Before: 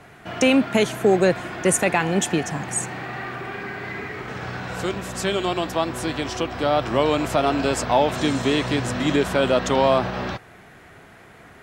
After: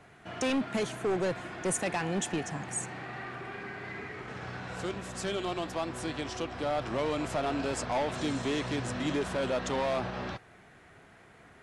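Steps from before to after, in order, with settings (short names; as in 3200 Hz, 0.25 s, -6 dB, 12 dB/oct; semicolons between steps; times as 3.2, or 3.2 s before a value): overloaded stage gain 16.5 dB; gain -9 dB; AAC 96 kbps 24000 Hz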